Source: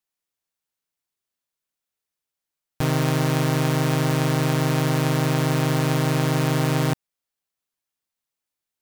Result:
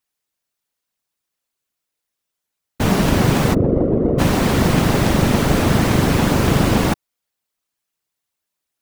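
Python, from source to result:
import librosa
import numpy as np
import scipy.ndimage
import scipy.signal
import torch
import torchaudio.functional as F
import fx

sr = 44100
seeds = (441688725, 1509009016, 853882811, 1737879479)

y = fx.envelope_sharpen(x, sr, power=3.0, at=(3.53, 4.18), fade=0.02)
y = fx.whisperise(y, sr, seeds[0])
y = y * librosa.db_to_amplitude(5.5)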